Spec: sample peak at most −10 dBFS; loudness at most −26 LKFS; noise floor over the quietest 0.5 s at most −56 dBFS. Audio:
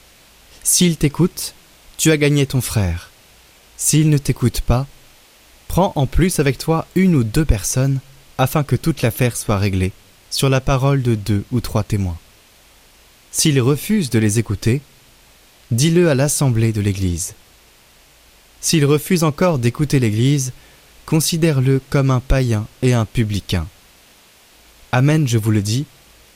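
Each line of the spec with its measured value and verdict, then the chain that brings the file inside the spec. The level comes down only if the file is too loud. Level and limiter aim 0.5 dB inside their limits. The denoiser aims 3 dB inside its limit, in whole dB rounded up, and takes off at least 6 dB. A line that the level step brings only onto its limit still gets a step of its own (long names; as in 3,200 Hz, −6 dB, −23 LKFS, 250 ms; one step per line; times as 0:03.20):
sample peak −3.0 dBFS: out of spec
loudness −17.5 LKFS: out of spec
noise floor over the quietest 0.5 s −49 dBFS: out of spec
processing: level −9 dB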